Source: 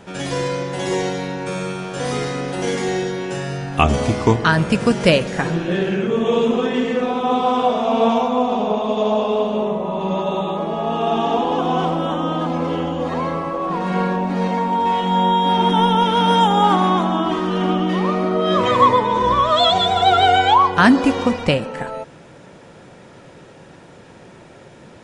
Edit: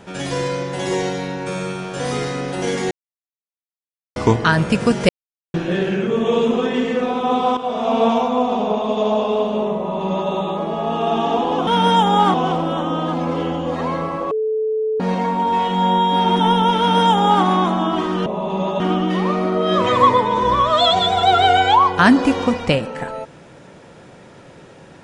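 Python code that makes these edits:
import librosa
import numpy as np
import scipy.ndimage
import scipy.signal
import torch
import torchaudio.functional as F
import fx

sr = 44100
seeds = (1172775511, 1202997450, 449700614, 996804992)

y = fx.edit(x, sr, fx.silence(start_s=2.91, length_s=1.25),
    fx.silence(start_s=5.09, length_s=0.45),
    fx.fade_in_from(start_s=7.57, length_s=0.31, floor_db=-12.0),
    fx.duplicate(start_s=9.77, length_s=0.54, to_s=17.59),
    fx.bleep(start_s=13.64, length_s=0.69, hz=436.0, db=-17.0),
    fx.duplicate(start_s=16.11, length_s=0.67, to_s=11.67), tone=tone)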